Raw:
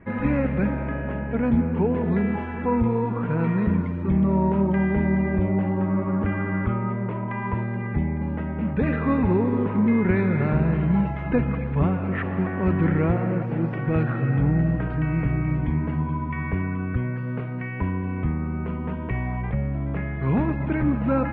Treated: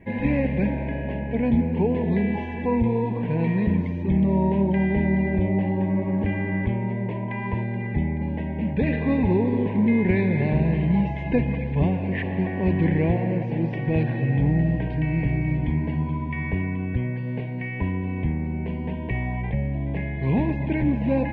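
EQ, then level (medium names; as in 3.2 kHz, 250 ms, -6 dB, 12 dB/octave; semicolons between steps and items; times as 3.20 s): Butterworth band-stop 1.3 kHz, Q 1.5; treble shelf 2.5 kHz +9 dB; 0.0 dB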